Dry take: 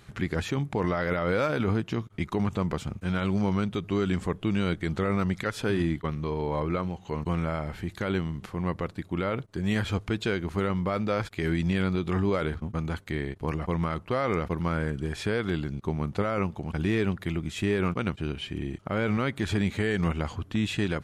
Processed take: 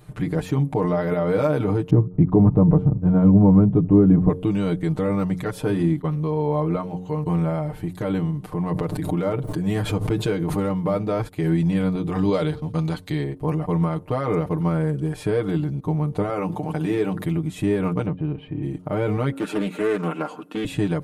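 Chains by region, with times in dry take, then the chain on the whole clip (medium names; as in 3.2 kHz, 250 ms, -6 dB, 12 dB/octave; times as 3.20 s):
1.90–4.29 s: low-pass 1.1 kHz + bass shelf 390 Hz +11 dB
8.52–10.94 s: hard clipper -19 dBFS + swell ahead of each attack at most 40 dB/s
12.15–13.24 s: peaking EQ 4.2 kHz +12.5 dB 1.2 oct + tape noise reduction on one side only encoder only
16.29–17.25 s: high-pass 270 Hz 6 dB/octave + hum notches 50/100/150/200/250/300/350 Hz + level flattener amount 50%
18.06–18.63 s: distance through air 460 m + band-stop 1.4 kHz, Q 13
19.32–20.65 s: steep high-pass 200 Hz + small resonant body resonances 1.4/2.6 kHz, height 15 dB, ringing for 35 ms + loudspeaker Doppler distortion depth 0.29 ms
whole clip: high-order bell 3 kHz -10 dB 2.8 oct; comb 6.6 ms, depth 84%; de-hum 90.68 Hz, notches 6; trim +4 dB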